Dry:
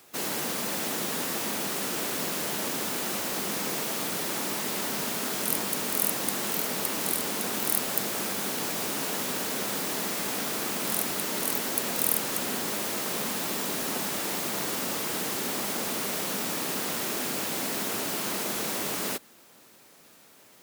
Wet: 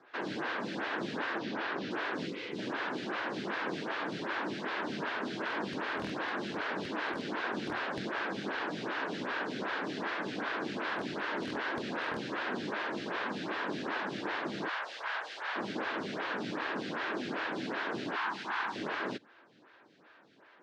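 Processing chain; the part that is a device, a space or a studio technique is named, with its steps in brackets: 1.38–1.91 LPF 5800 Hz 24 dB/oct; 2.27–2.58 spectral gain 550–1900 Hz -16 dB; 14.68–15.56 HPF 640 Hz 24 dB/oct; vibe pedal into a guitar amplifier (photocell phaser 2.6 Hz; tube stage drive 12 dB, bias 0.45; speaker cabinet 100–3900 Hz, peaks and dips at 120 Hz +5 dB, 320 Hz +5 dB, 1000 Hz +4 dB, 1600 Hz +10 dB); 18.16–18.76 resonant low shelf 710 Hz -7.5 dB, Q 3

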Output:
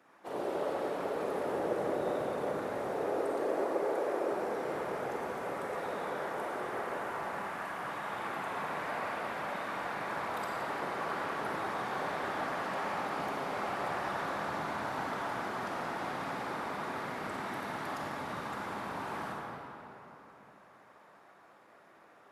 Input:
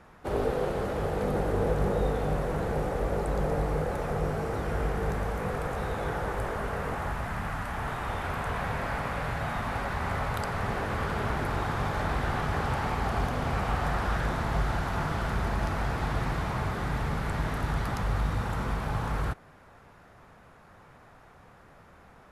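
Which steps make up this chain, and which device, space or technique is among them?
2.94–4.3 resonant low shelf 250 Hz -12 dB, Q 3; whispering ghost (whisperiser; HPF 310 Hz 12 dB/oct; reverb RT60 3.3 s, pre-delay 35 ms, DRR -2.5 dB); gain -8 dB

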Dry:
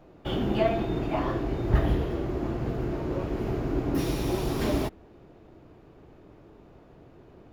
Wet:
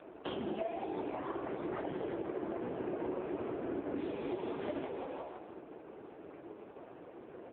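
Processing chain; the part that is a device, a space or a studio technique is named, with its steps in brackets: 1.43–2.6 low shelf 82 Hz -3.5 dB; frequency-shifting echo 0.164 s, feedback 41%, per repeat +110 Hz, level -10 dB; voicemail (BPF 310–3000 Hz; compressor 10:1, threshold -40 dBFS, peak gain reduction 20.5 dB; gain +7 dB; AMR-NB 4.75 kbps 8000 Hz)

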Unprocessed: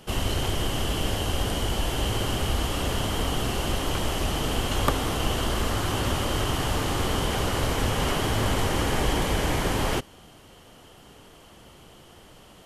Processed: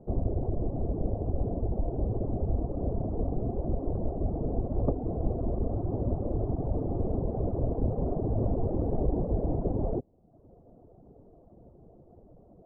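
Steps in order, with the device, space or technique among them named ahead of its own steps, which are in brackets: dynamic EQ 1600 Hz, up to -5 dB, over -45 dBFS, Q 1.4; reverb removal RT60 0.78 s; under water (LPF 590 Hz 24 dB/oct; bell 690 Hz +6.5 dB 0.21 oct); 8.27–9.05 high shelf 4500 Hz +11.5 dB

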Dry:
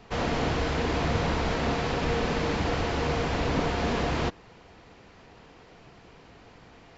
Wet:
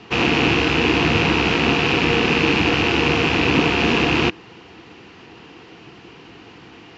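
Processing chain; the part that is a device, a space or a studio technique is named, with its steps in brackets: car door speaker with a rattle (rattling part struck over -36 dBFS, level -21 dBFS; speaker cabinet 100–6700 Hz, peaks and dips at 330 Hz +8 dB, 600 Hz -9 dB, 2800 Hz +8 dB); gain +8.5 dB

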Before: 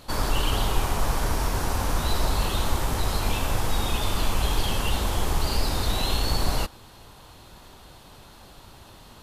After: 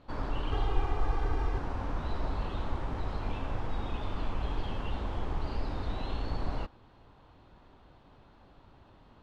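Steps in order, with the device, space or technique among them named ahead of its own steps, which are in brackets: 0.51–1.58 comb 2.5 ms, depth 80%; phone in a pocket (LPF 3300 Hz 12 dB/oct; bell 280 Hz +4.5 dB 0.2 oct; high shelf 2300 Hz -9 dB); gain -8.5 dB

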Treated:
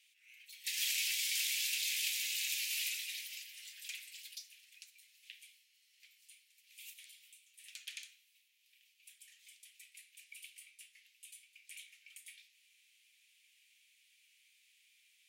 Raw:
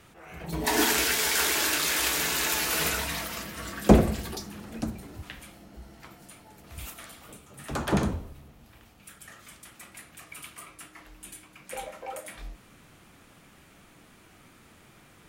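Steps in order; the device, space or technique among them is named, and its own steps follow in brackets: steep high-pass 2300 Hz 48 dB/oct; behind a face mask (high shelf 3400 Hz -7.5 dB); gain -3 dB

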